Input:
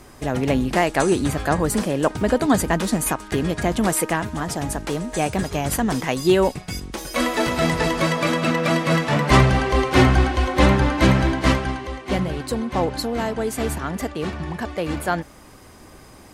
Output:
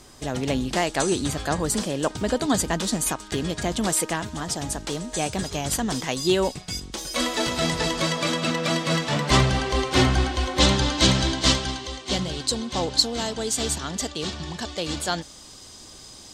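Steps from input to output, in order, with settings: band shelf 5100 Hz +8.5 dB, from 10.59 s +16 dB; gain -5 dB

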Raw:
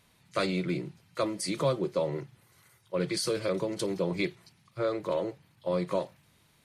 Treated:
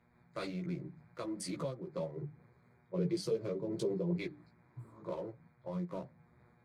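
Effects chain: Wiener smoothing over 15 samples; bell 130 Hz +7 dB 1.6 oct; notches 50/100/150/200/250/300 Hz; compressor 2.5:1, threshold -32 dBFS, peak gain reduction 8.5 dB; 2.15–4.16 fifteen-band EQ 160 Hz +5 dB, 400 Hz +8 dB, 1600 Hz -6 dB, 10000 Hz -5 dB; 4.59–4.99 spectral repair 220–7300 Hz both; buzz 120 Hz, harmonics 20, -65 dBFS -3 dB/oct; chorus voices 6, 1.3 Hz, delay 15 ms, depth 3 ms; noise-modulated level, depth 60%; gain -1 dB

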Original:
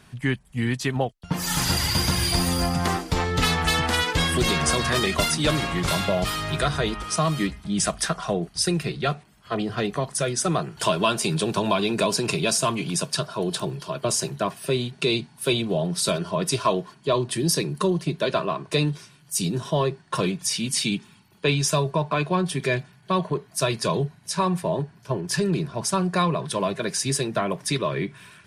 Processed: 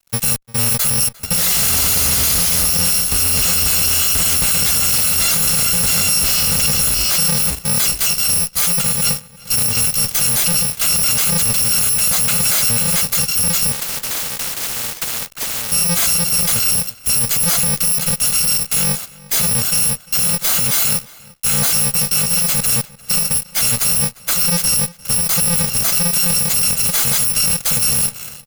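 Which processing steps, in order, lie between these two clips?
FFT order left unsorted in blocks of 128 samples; high shelf 2300 Hz +8 dB; fuzz box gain 31 dB, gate -39 dBFS; outdoor echo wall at 60 m, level -19 dB; 13.72–15.72 spectral compressor 4:1

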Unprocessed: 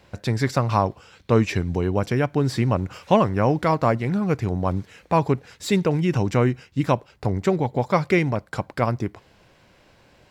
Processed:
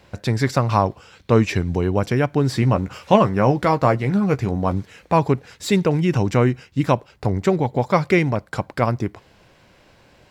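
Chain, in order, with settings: 2.61–4.74 doubler 15 ms -9 dB; gain +2.5 dB

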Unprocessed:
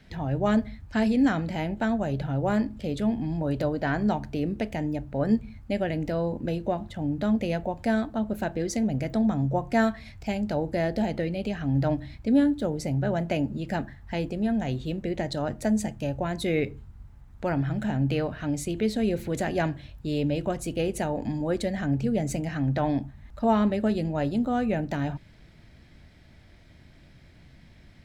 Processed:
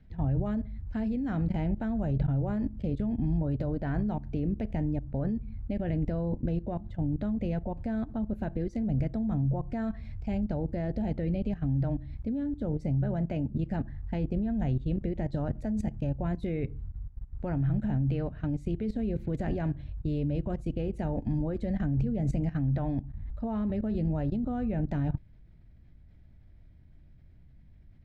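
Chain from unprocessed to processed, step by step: level quantiser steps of 16 dB; RIAA curve playback; gain -4.5 dB

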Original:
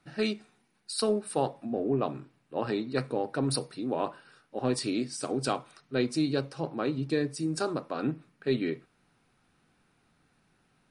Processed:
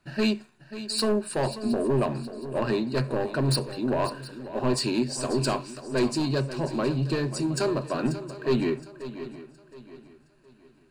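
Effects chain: overloaded stage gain 22.5 dB; low shelf 63 Hz +8 dB; sample leveller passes 1; ripple EQ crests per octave 1.4, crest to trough 8 dB; on a send: swung echo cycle 0.717 s, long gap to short 3:1, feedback 33%, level -13 dB; on the sum: gain +1.5 dB

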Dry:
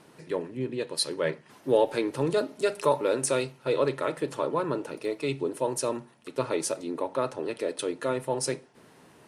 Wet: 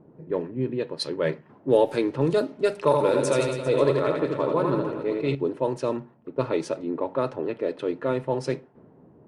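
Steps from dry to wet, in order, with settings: low-pass opened by the level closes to 580 Hz, open at -20.5 dBFS; low shelf 460 Hz +6.5 dB; 2.77–5.35 reverse bouncing-ball echo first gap 80 ms, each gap 1.15×, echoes 5

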